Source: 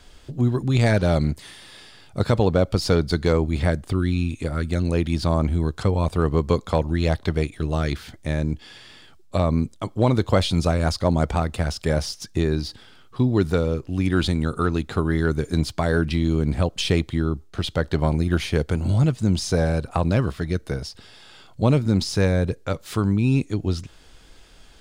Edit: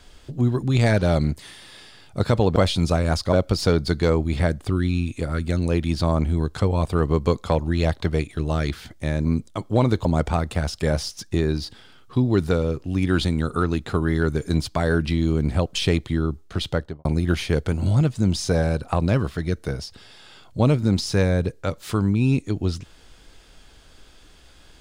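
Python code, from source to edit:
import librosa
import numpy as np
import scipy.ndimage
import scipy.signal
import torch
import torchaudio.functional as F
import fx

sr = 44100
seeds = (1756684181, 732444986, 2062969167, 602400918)

y = fx.studio_fade_out(x, sr, start_s=17.72, length_s=0.36)
y = fx.edit(y, sr, fx.cut(start_s=8.48, length_s=1.03),
    fx.move(start_s=10.31, length_s=0.77, to_s=2.56), tone=tone)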